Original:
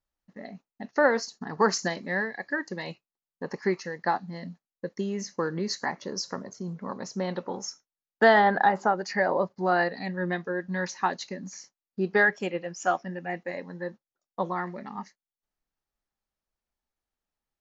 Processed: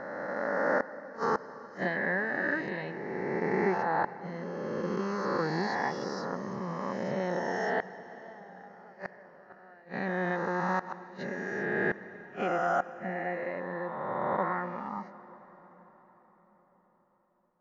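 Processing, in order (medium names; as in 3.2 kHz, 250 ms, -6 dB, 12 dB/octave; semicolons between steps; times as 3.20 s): reverse spectral sustain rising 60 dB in 2.85 s; low-pass 2.2 kHz 12 dB/octave; inverted gate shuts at -12 dBFS, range -30 dB; on a send: reverberation RT60 5.4 s, pre-delay 71 ms, DRR 14.5 dB; on the sum: trim -4.5 dB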